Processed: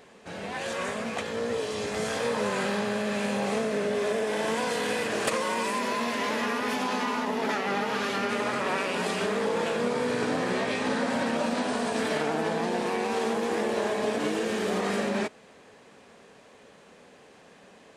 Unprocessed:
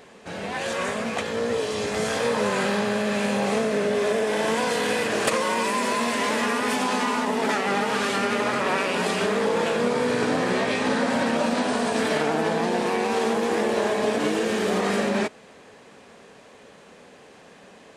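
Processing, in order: 5.78–8.29 s: peaking EQ 8.4 kHz -9 dB 0.42 oct; trim -4.5 dB

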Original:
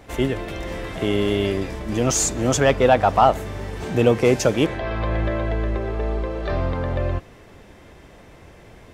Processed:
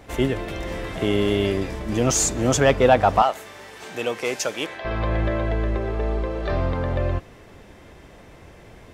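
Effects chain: 3.22–4.85 s: high-pass 1.3 kHz 6 dB/octave

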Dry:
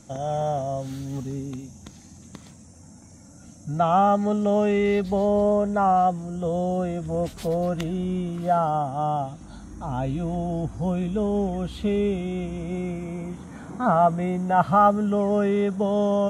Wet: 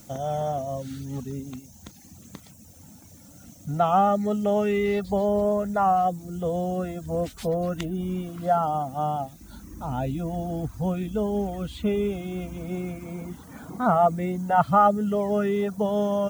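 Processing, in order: added noise blue -54 dBFS; reverb removal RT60 0.76 s

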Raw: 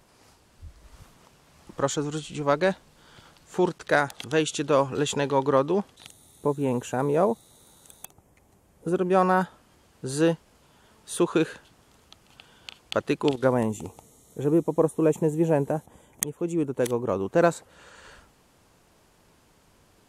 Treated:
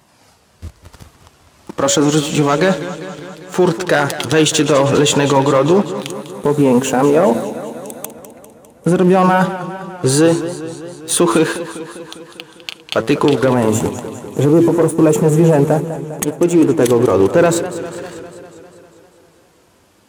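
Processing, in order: de-hum 112.2 Hz, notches 5; flange 0.11 Hz, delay 1 ms, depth 6.2 ms, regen -51%; waveshaping leveller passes 2; high-pass 81 Hz; loudness maximiser +18 dB; modulated delay 200 ms, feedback 66%, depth 112 cents, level -13 dB; trim -3 dB

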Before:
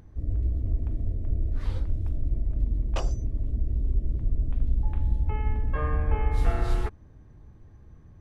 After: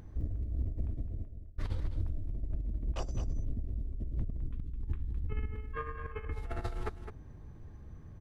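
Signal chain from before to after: 4.37–6.35 s: time-frequency box 500–1000 Hz -17 dB; compressor with a negative ratio -30 dBFS, ratio -1; short-mantissa float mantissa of 8-bit; 0.75–1.58 s: fade out; 5.55–6.26 s: resonant low shelf 390 Hz -7 dB, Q 1.5; delay 210 ms -9.5 dB; trim -4.5 dB

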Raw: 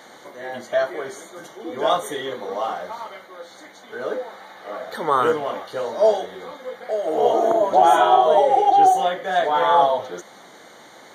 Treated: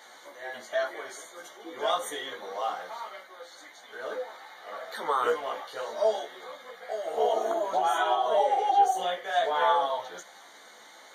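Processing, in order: high-pass 960 Hz 6 dB/octave; compression 4:1, threshold -18 dBFS, peak gain reduction 4.5 dB; chorus voices 4, 0.43 Hz, delay 16 ms, depth 2.4 ms

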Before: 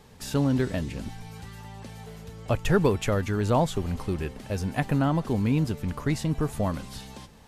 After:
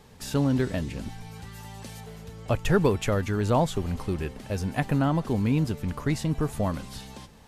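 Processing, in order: 1.54–1.99 s: treble shelf 5.9 kHz -> 3.4 kHz +9.5 dB

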